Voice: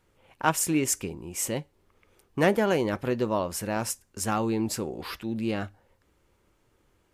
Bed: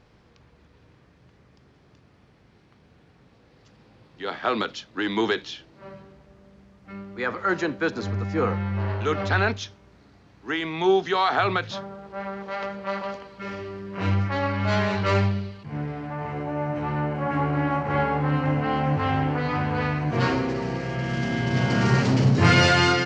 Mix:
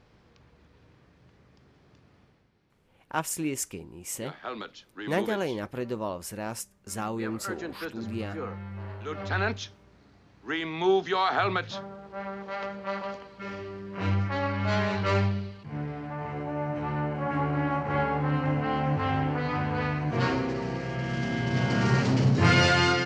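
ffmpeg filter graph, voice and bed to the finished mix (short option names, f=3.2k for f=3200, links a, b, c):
-filter_complex "[0:a]adelay=2700,volume=-5.5dB[a];[1:a]volume=6dB,afade=t=out:st=2.18:d=0.33:silence=0.334965,afade=t=in:st=9.06:d=0.52:silence=0.375837[b];[a][b]amix=inputs=2:normalize=0"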